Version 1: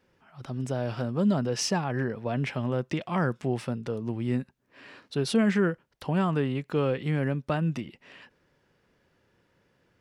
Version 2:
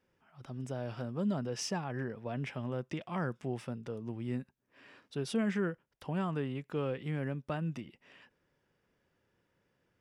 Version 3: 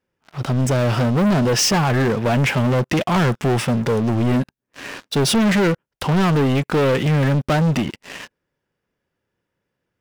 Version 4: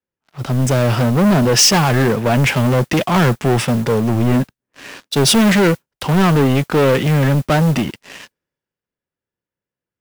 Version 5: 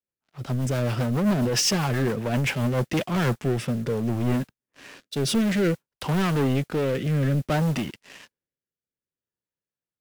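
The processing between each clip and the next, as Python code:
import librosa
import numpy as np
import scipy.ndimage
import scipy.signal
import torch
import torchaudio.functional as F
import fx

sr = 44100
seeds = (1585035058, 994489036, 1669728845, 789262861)

y1 = fx.notch(x, sr, hz=4200.0, q=9.4)
y1 = F.gain(torch.from_numpy(y1), -8.5).numpy()
y2 = fx.leveller(y1, sr, passes=5)
y2 = F.gain(torch.from_numpy(y2), 8.5).numpy()
y3 = fx.mod_noise(y2, sr, seeds[0], snr_db=24)
y3 = fx.band_widen(y3, sr, depth_pct=40)
y3 = F.gain(torch.from_numpy(y3), 3.5).numpy()
y4 = fx.rotary_switch(y3, sr, hz=7.5, then_hz=0.6, switch_at_s=2.55)
y4 = F.gain(torch.from_numpy(y4), -8.0).numpy()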